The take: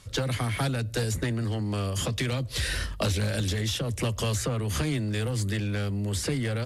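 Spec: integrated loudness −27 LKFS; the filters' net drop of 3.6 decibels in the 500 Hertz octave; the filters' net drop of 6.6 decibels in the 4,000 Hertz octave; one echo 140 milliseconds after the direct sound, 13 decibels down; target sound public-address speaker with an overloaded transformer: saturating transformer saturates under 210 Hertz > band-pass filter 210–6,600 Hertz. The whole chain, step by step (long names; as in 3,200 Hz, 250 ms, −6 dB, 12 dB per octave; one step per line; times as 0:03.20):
parametric band 500 Hz −4 dB
parametric band 4,000 Hz −8 dB
single-tap delay 140 ms −13 dB
saturating transformer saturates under 210 Hz
band-pass filter 210–6,600 Hz
level +8.5 dB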